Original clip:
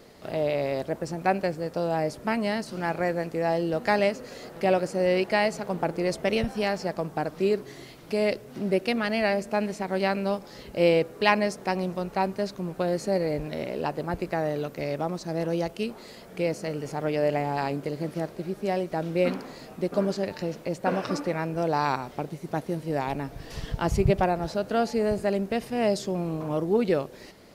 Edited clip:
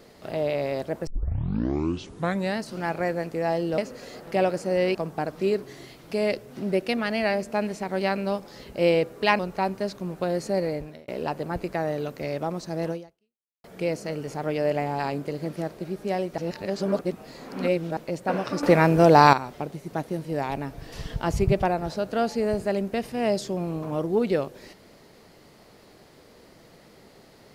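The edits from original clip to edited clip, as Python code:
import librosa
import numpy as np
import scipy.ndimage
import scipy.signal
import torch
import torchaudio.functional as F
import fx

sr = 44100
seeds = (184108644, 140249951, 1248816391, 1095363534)

y = fx.edit(x, sr, fx.tape_start(start_s=1.07, length_s=1.52),
    fx.cut(start_s=3.78, length_s=0.29),
    fx.cut(start_s=5.24, length_s=1.7),
    fx.cut(start_s=11.38, length_s=0.59),
    fx.fade_out_span(start_s=13.24, length_s=0.42),
    fx.fade_out_span(start_s=15.49, length_s=0.73, curve='exp'),
    fx.reverse_span(start_s=18.96, length_s=1.59),
    fx.clip_gain(start_s=21.21, length_s=0.7, db=11.0), tone=tone)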